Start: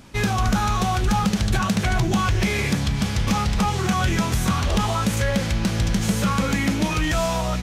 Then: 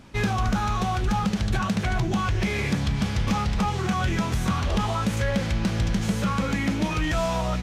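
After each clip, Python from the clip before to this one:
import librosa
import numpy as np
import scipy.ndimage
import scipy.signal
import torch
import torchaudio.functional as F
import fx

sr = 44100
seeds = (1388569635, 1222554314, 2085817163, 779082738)

y = fx.high_shelf(x, sr, hz=6100.0, db=-9.0)
y = fx.rider(y, sr, range_db=10, speed_s=0.5)
y = y * 10.0 ** (-3.0 / 20.0)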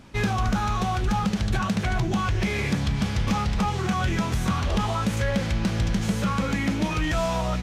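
y = x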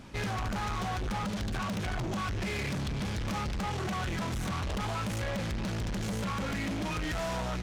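y = 10.0 ** (-31.0 / 20.0) * np.tanh(x / 10.0 ** (-31.0 / 20.0))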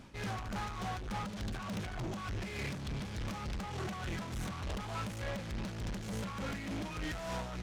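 y = x * (1.0 - 0.47 / 2.0 + 0.47 / 2.0 * np.cos(2.0 * np.pi * 3.4 * (np.arange(len(x)) / sr)))
y = y * 10.0 ** (-4.0 / 20.0)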